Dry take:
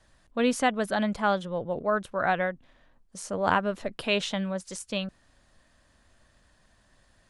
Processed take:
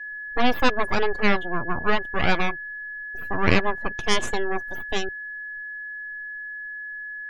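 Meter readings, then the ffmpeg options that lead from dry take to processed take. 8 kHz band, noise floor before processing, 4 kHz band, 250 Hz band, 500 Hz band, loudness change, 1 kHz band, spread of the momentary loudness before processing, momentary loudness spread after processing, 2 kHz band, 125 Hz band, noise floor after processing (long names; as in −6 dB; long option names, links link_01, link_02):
+1.0 dB, −64 dBFS, +5.0 dB, +2.0 dB, +1.5 dB, +2.0 dB, +2.5 dB, 10 LU, 12 LU, +8.0 dB, +6.0 dB, −35 dBFS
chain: -af "aeval=exprs='abs(val(0))':channel_layout=same,aeval=exprs='val(0)+0.0112*sin(2*PI*1700*n/s)':channel_layout=same,afftdn=noise_reduction=25:noise_floor=-42,volume=7dB"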